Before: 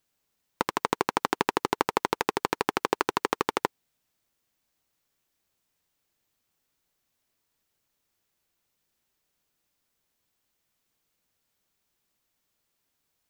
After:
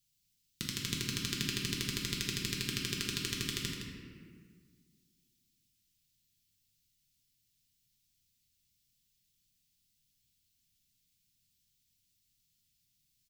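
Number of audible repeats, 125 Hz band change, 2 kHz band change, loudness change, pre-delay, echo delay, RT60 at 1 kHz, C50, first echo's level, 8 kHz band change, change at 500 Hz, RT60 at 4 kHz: 1, +5.0 dB, -7.5 dB, -6.5 dB, 6 ms, 0.165 s, 1.6 s, 0.0 dB, -8.0 dB, +2.5 dB, -18.0 dB, 1.1 s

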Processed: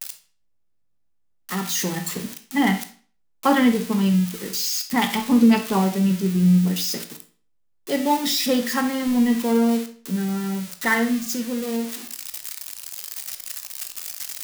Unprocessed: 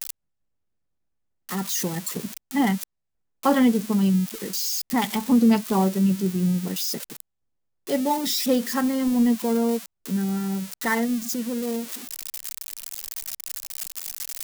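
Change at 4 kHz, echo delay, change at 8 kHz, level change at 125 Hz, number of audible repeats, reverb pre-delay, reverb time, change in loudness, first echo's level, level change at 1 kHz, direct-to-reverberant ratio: +4.0 dB, none, +1.5 dB, +3.5 dB, none, 17 ms, 0.45 s, +2.0 dB, none, +3.0 dB, 6.5 dB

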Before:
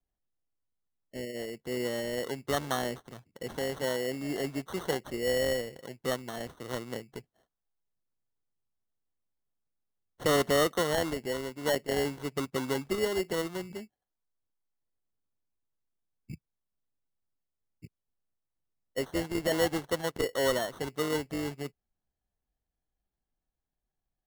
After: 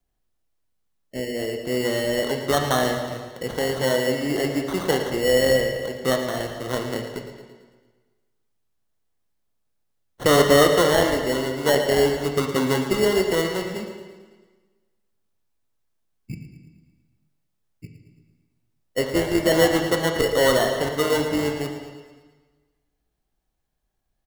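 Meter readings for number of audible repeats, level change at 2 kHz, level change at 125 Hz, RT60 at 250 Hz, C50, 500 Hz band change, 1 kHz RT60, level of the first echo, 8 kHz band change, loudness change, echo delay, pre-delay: 5, +10.5 dB, +10.5 dB, 1.4 s, 5.0 dB, +10.5 dB, 1.4 s, -12.0 dB, +9.0 dB, +10.0 dB, 0.112 s, 8 ms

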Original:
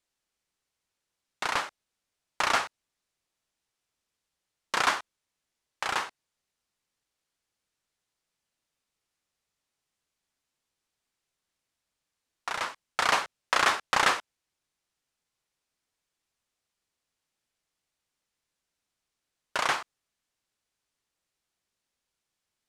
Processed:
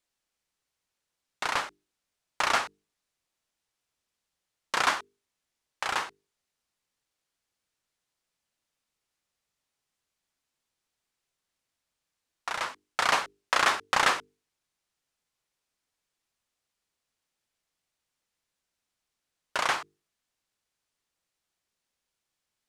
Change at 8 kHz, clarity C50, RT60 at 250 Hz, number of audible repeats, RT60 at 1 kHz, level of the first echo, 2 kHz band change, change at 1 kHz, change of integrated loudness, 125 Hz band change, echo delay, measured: 0.0 dB, none, none, none, none, none, 0.0 dB, 0.0 dB, 0.0 dB, -1.0 dB, none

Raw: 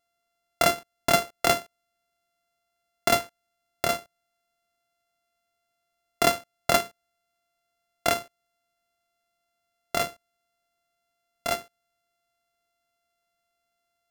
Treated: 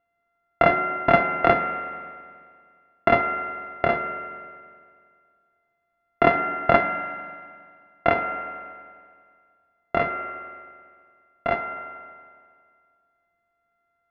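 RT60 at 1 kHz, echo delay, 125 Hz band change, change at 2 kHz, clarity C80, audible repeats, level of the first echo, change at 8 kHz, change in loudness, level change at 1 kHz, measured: 2.0 s, none, +5.5 dB, +5.5 dB, 8.5 dB, none, none, under -35 dB, +3.0 dB, +6.5 dB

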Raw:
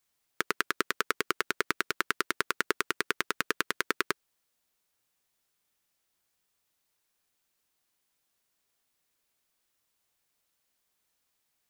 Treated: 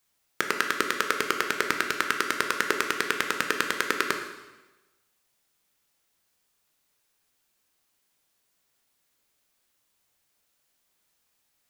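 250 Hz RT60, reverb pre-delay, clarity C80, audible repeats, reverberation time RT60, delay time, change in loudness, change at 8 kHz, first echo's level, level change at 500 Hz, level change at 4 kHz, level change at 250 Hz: 1.1 s, 7 ms, 8.5 dB, none, 1.1 s, none, +5.0 dB, +5.0 dB, none, +5.0 dB, +4.5 dB, +4.5 dB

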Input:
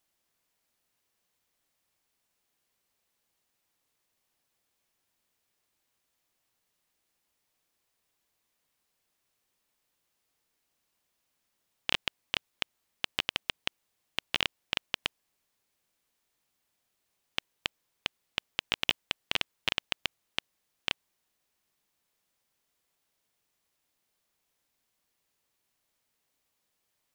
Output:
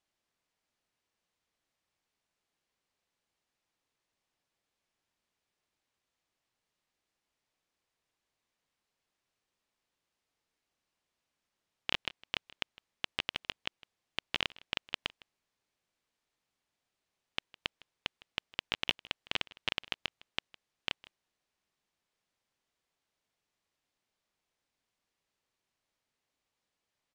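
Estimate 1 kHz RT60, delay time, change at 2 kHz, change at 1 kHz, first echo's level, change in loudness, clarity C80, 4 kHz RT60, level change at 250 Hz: none, 0.158 s, -3.5 dB, -3.5 dB, -21.5 dB, -4.0 dB, none, none, -3.0 dB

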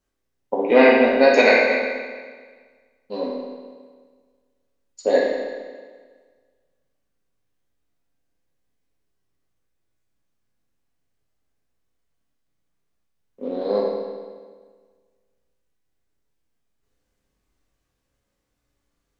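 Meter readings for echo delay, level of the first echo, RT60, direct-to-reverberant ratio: none, none, 1.6 s, -4.0 dB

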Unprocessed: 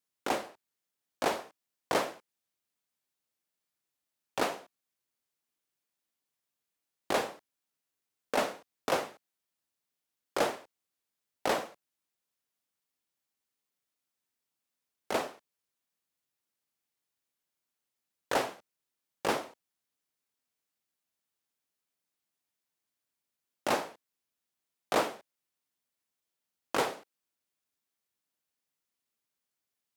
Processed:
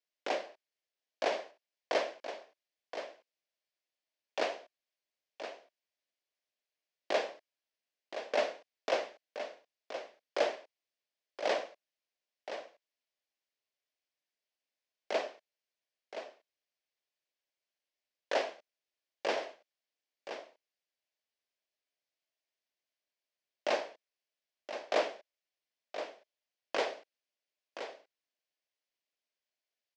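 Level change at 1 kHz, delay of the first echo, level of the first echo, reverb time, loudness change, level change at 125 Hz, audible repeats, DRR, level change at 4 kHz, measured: -4.5 dB, 1.022 s, -10.0 dB, none, -4.0 dB, under -15 dB, 1, none, -1.5 dB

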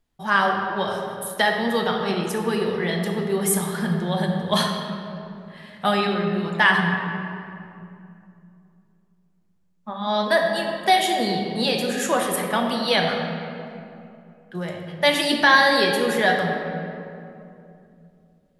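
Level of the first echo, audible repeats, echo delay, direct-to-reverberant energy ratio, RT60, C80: none, none, none, 1.0 dB, 2.7 s, 4.0 dB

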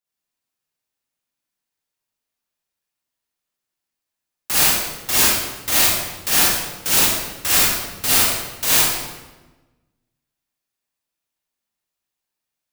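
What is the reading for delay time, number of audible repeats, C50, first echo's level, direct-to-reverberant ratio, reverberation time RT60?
none, none, -6.0 dB, none, -9.0 dB, 1.2 s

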